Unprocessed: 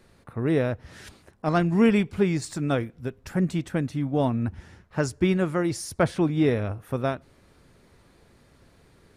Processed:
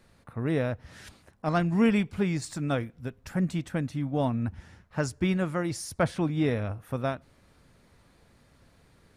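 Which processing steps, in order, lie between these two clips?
peaking EQ 380 Hz -5.5 dB 0.49 oct; trim -2.5 dB

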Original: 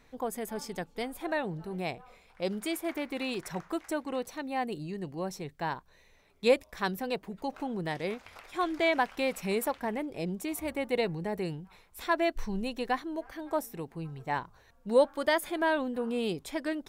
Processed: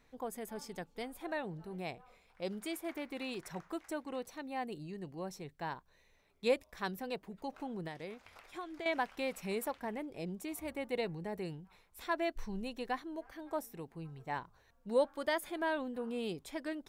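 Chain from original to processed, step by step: 7.87–8.86 s: compression 6:1, threshold -34 dBFS, peak gain reduction 11 dB; trim -7 dB

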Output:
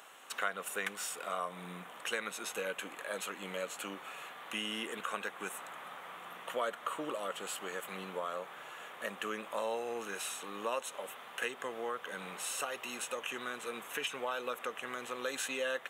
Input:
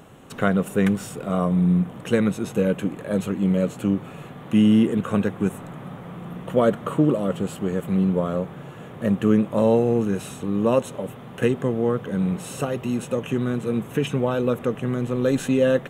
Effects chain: high-pass 1.1 kHz 12 dB/octave; compression 2:1, threshold -37 dBFS, peak gain reduction 8.5 dB; trim +1 dB

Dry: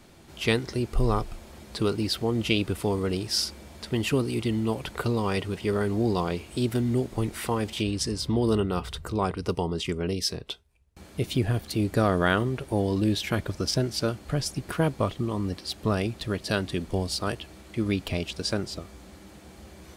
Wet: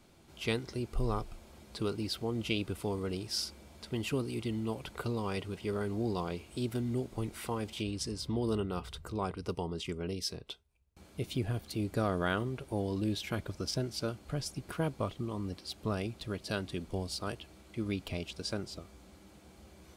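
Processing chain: band-stop 1.8 kHz, Q 11; trim -8.5 dB

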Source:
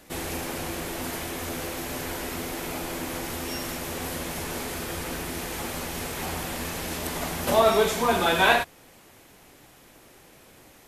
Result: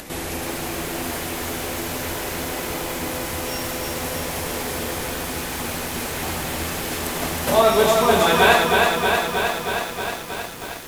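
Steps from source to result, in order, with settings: upward compressor, threshold -32 dBFS; bit-crushed delay 316 ms, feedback 80%, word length 7-bit, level -3 dB; trim +3.5 dB

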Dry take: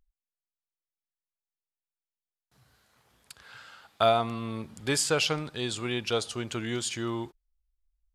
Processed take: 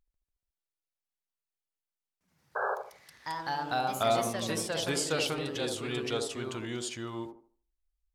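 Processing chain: ever faster or slower copies 143 ms, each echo +2 st, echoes 3; painted sound noise, 2.55–2.75 s, 370–1700 Hz -26 dBFS; feedback echo behind a band-pass 76 ms, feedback 30%, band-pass 460 Hz, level -3.5 dB; trim -5.5 dB

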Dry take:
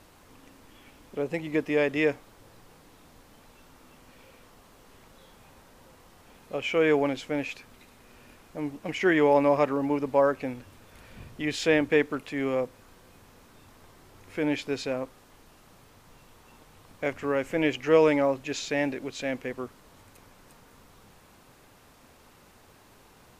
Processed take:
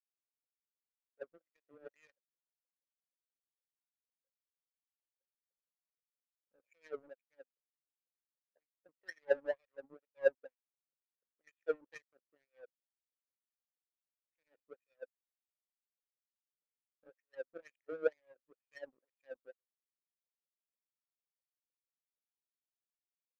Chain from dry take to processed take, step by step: wah-wah 2.1 Hz 220–3400 Hz, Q 3.2; cascade formant filter e; power-law waveshaper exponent 2; trim +5.5 dB

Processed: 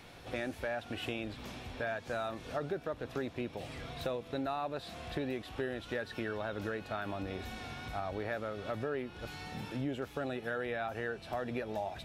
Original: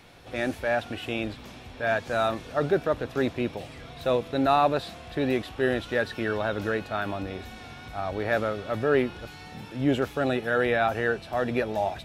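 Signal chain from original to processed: compression 6:1, threshold -33 dBFS, peak gain reduction 15 dB; trim -1 dB

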